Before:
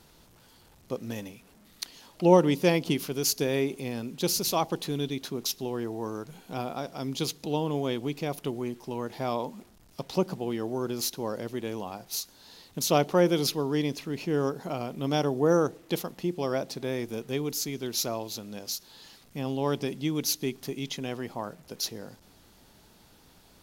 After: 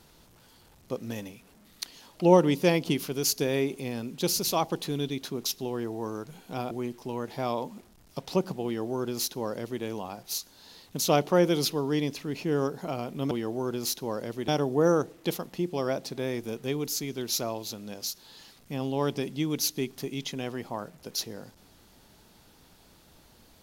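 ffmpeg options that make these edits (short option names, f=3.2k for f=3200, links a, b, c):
-filter_complex "[0:a]asplit=4[a][b][c][d];[a]atrim=end=6.712[e];[b]atrim=start=8.528:end=15.132[f];[c]atrim=start=10.468:end=11.642[g];[d]atrim=start=15.128[h];[e][f]acrossfade=d=0.004:c1=hsin:c2=hsin[i];[i][g]acrossfade=d=0.004:c1=hsin:c2=hsin[j];[j][h]acrossfade=d=0.004:c1=hsin:c2=hsin"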